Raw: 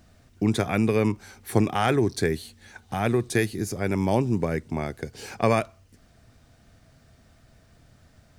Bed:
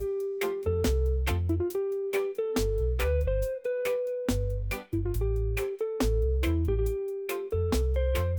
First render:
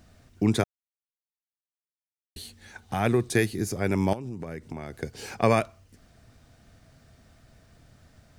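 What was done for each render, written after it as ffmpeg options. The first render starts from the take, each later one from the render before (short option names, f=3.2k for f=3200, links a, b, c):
-filter_complex "[0:a]asettb=1/sr,asplit=3[a][b][c];[a]atrim=end=4.134[d];[b]atrim=start=4.13:end=4.95,asetpts=PTS-STARTPTS,afade=t=in:d=0.004:c=qsin,afade=t=out:st=0.816:d=0.004:c=qsin,acompressor=threshold=-31dB:ratio=12:attack=3.2:release=140:knee=1:detection=peak[e];[c]atrim=start=4.946[f];[d][e]acrossfade=d=0.004:c1=hsin:c2=qsin[g];[g][f]acrossfade=d=0.004:c1=qsin:c2=hsin,asplit=3[h][i][j];[h]atrim=end=0.64,asetpts=PTS-STARTPTS,afade=t=out:st=0.636:d=0.004:c=hsin[k];[i]atrim=start=0.64:end=2.36,asetpts=PTS-STARTPTS,volume=0[l];[j]atrim=start=2.36,asetpts=PTS-STARTPTS,afade=t=in:d=0.004:c=hsin[m];[k][l][m]concat=n=3:v=0:a=1"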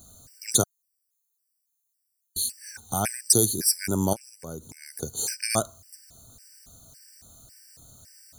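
-af "aexciter=amount=11.9:drive=3:freq=4.5k,afftfilt=real='re*gt(sin(2*PI*1.8*pts/sr)*(1-2*mod(floor(b*sr/1024/1500),2)),0)':imag='im*gt(sin(2*PI*1.8*pts/sr)*(1-2*mod(floor(b*sr/1024/1500),2)),0)':win_size=1024:overlap=0.75"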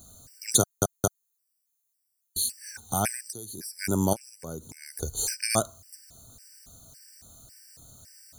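-filter_complex "[0:a]asplit=3[a][b][c];[a]afade=t=out:st=3.26:d=0.02[d];[b]acompressor=threshold=-35dB:ratio=12:attack=3.2:release=140:knee=1:detection=peak,afade=t=in:st=3.26:d=0.02,afade=t=out:st=3.78:d=0.02[e];[c]afade=t=in:st=3.78:d=0.02[f];[d][e][f]amix=inputs=3:normalize=0,asplit=3[g][h][i];[g]afade=t=out:st=4.87:d=0.02[j];[h]asubboost=boost=11.5:cutoff=52,afade=t=in:st=4.87:d=0.02,afade=t=out:st=5.34:d=0.02[k];[i]afade=t=in:st=5.34:d=0.02[l];[j][k][l]amix=inputs=3:normalize=0,asplit=4[m][n][o][p];[m]atrim=end=0.822[q];[n]atrim=start=0.598:end=0.822[r];[o]atrim=start=0.598:end=0.822[s];[p]atrim=start=1.258[t];[q][r]acrossfade=d=0.004:c1=hsin:c2=hsin[u];[u][s]acrossfade=d=0.004:c1=hsin:c2=hsin[v];[v][t]acrossfade=d=0.004:c1=hsin:c2=hsin"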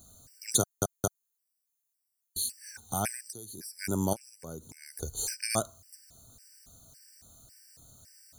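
-af "volume=-4.5dB"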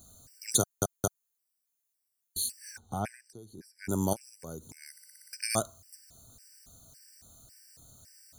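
-filter_complex "[0:a]asettb=1/sr,asplit=3[a][b][c];[a]atrim=end=2.784[d];[b]atrim=start=2.78:end=3.89,asetpts=PTS-STARTPTS,afade=t=in:d=0.004:c=qsin,afade=t=out:st=1.106:d=0.004:c=qsin,lowpass=f=1.2k:p=1[e];[c]atrim=start=3.886[f];[d][e]acrossfade=d=0.004:c1=hsin:c2=qsin[g];[g][f]acrossfade=d=0.004:c1=qsin:c2=hsin,asplit=8[h][i][j][k][l][m][n][o];[h]atrim=end=4.972[p];[i]atrim=start=4.908:end=4.972[q];[j]atrim=start=4.908:end=4.972[r];[k]atrim=start=4.908:end=4.972[s];[l]atrim=start=4.908:end=4.972[t];[m]atrim=start=4.908:end=4.972[u];[n]atrim=start=4.908:end=4.972[v];[o]atrim=start=5.328[w];[p][q]acrossfade=d=0.004:c1=hsin:c2=hsin[x];[x][r]acrossfade=d=0.004:c1=hsin:c2=hsin[y];[y][s]acrossfade=d=0.004:c1=hsin:c2=hsin[z];[z][t]acrossfade=d=0.004:c1=hsin:c2=hsin[aa];[aa][u]acrossfade=d=0.004:c1=hsin:c2=hsin[ab];[ab][v]acrossfade=d=0.004:c1=hsin:c2=hsin[ac];[ac][w]acrossfade=d=0.004:c1=hsin:c2=hsin"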